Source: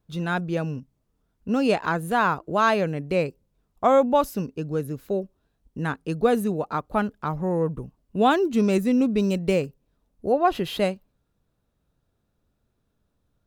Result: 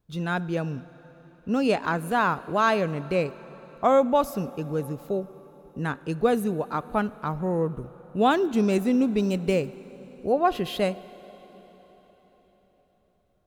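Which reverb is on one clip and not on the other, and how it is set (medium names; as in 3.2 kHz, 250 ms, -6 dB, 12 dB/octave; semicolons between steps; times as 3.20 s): plate-style reverb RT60 4.8 s, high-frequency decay 0.85×, DRR 17 dB; trim -1.5 dB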